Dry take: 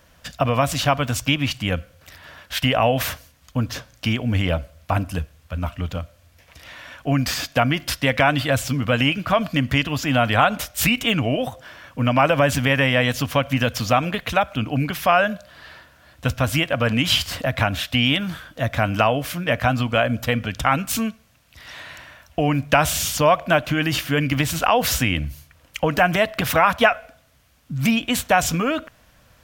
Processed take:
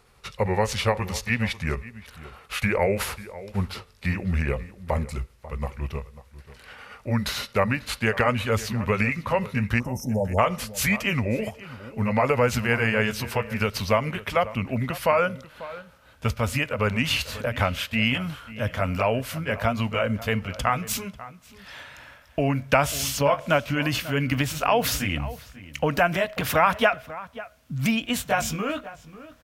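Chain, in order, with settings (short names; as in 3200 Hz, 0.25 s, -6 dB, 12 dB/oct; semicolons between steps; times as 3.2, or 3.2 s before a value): gliding pitch shift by -4.5 st ending unshifted; spectral delete 9.79–10.39, 930–5100 Hz; outdoor echo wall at 93 m, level -16 dB; gain -3 dB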